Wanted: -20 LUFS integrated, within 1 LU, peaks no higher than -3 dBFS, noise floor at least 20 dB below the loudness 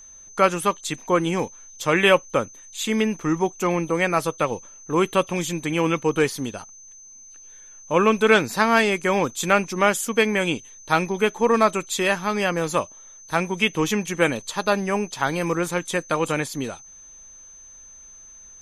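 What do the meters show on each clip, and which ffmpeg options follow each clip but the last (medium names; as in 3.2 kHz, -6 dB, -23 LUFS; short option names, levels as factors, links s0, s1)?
steady tone 6.2 kHz; tone level -43 dBFS; loudness -22.0 LUFS; peak level -3.0 dBFS; loudness target -20.0 LUFS
-> -af "bandreject=f=6200:w=30"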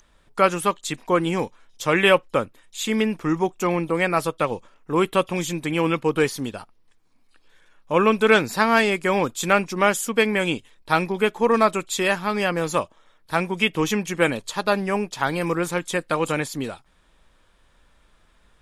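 steady tone not found; loudness -22.0 LUFS; peak level -3.0 dBFS; loudness target -20.0 LUFS
-> -af "volume=1.26,alimiter=limit=0.708:level=0:latency=1"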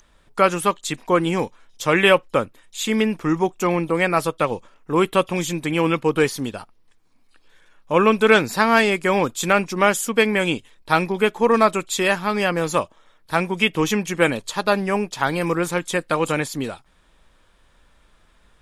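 loudness -20.5 LUFS; peak level -3.0 dBFS; noise floor -58 dBFS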